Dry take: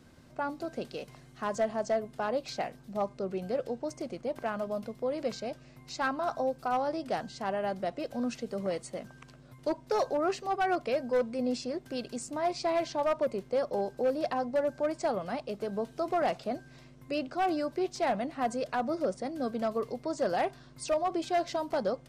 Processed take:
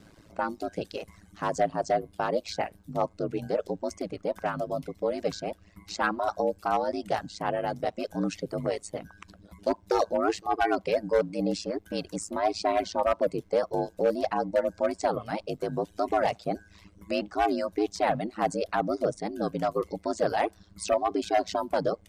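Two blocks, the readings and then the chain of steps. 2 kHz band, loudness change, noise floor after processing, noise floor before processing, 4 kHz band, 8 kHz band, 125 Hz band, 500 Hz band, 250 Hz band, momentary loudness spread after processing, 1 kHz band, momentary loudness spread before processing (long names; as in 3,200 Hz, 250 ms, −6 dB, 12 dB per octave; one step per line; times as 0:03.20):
+3.5 dB, +3.0 dB, −59 dBFS, −55 dBFS, +3.5 dB, +3.5 dB, +7.0 dB, +3.0 dB, +2.5 dB, 8 LU, +3.5 dB, 8 LU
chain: ring modulation 54 Hz
reverb reduction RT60 0.77 s
level +7 dB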